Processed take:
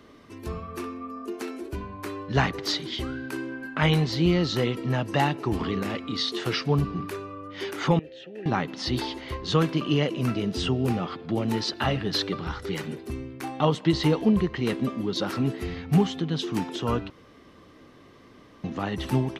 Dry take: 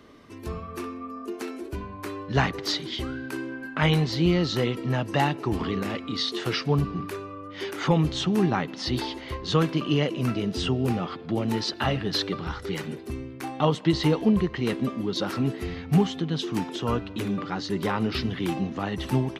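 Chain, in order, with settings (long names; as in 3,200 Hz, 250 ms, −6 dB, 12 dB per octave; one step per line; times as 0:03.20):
0:07.99–0:08.46: formant filter e
0:17.10–0:18.64: fill with room tone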